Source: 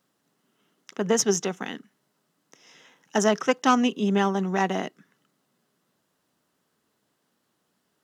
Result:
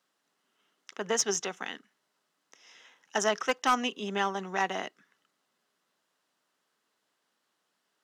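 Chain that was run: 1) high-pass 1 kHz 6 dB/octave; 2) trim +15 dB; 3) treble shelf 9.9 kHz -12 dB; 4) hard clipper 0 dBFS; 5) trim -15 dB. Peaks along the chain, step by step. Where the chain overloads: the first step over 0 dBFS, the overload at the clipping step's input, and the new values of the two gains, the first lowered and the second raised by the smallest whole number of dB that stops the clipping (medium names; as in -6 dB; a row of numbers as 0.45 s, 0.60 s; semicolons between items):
-8.5 dBFS, +6.5 dBFS, +5.0 dBFS, 0.0 dBFS, -15.0 dBFS; step 2, 5.0 dB; step 2 +10 dB, step 5 -10 dB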